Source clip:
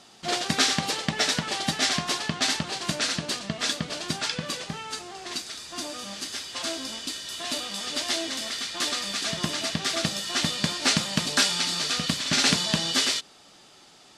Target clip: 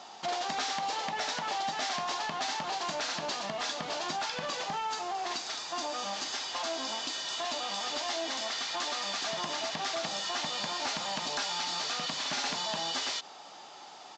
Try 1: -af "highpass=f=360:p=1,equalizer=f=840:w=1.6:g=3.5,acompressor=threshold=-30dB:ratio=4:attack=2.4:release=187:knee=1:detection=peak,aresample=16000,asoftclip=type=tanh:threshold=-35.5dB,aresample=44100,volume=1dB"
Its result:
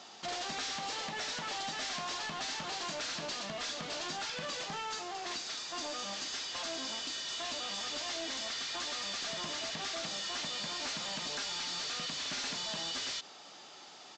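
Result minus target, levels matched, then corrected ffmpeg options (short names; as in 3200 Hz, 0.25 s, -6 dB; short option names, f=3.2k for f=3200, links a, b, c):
soft clip: distortion +10 dB; 1000 Hz band -4.5 dB
-af "highpass=f=360:p=1,equalizer=f=840:w=1.6:g=12.5,acompressor=threshold=-30dB:ratio=4:attack=2.4:release=187:knee=1:detection=peak,aresample=16000,asoftclip=type=tanh:threshold=-25.5dB,aresample=44100,volume=1dB"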